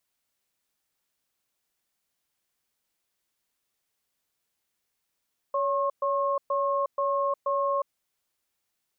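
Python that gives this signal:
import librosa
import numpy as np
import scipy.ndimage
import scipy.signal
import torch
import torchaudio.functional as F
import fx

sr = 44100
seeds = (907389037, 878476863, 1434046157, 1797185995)

y = fx.cadence(sr, length_s=2.33, low_hz=562.0, high_hz=1080.0, on_s=0.36, off_s=0.12, level_db=-26.0)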